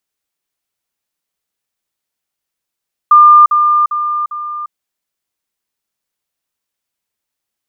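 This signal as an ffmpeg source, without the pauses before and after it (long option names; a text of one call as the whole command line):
ffmpeg -f lavfi -i "aevalsrc='pow(10,(-1.5-6*floor(t/0.4))/20)*sin(2*PI*1200*t)*clip(min(mod(t,0.4),0.35-mod(t,0.4))/0.005,0,1)':duration=1.6:sample_rate=44100" out.wav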